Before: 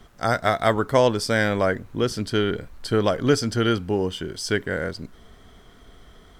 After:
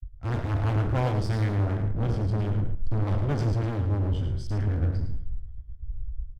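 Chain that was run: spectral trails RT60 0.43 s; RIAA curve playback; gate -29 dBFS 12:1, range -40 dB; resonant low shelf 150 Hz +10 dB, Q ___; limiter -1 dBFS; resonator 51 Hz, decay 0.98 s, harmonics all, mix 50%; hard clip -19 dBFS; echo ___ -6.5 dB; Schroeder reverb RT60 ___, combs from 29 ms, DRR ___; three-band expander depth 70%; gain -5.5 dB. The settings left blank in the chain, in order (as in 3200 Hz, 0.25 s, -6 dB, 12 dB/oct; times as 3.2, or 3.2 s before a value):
1.5, 0.109 s, 0.87 s, 17.5 dB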